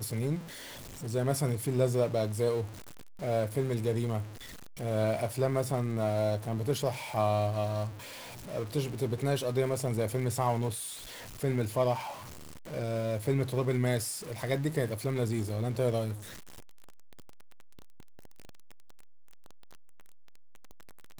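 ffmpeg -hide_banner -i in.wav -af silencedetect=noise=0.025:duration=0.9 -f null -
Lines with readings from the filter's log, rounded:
silence_start: 16.13
silence_end: 21.20 | silence_duration: 5.07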